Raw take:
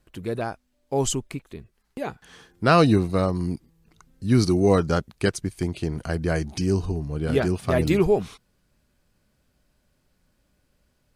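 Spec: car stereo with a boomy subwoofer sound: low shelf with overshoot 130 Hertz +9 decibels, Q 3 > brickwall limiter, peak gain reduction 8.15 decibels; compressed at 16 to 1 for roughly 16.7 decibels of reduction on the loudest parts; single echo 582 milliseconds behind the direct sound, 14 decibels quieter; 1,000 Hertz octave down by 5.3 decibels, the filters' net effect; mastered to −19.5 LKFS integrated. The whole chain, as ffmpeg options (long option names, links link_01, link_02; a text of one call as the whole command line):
ffmpeg -i in.wav -af "equalizer=frequency=1000:width_type=o:gain=-7.5,acompressor=threshold=-31dB:ratio=16,lowshelf=frequency=130:width_type=q:width=3:gain=9,aecho=1:1:582:0.2,volume=13.5dB,alimiter=limit=-9dB:level=0:latency=1" out.wav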